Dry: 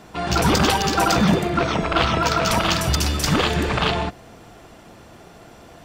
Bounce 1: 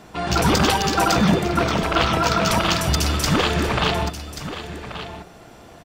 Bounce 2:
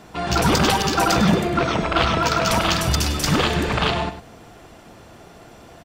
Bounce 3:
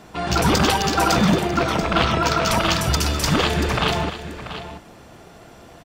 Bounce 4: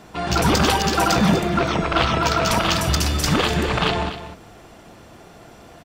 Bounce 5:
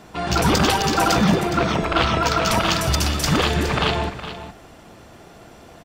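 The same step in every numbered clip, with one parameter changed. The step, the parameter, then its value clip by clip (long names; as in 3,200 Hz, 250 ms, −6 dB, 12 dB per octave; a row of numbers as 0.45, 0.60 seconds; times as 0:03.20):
single-tap delay, delay time: 1,133, 101, 686, 247, 415 milliseconds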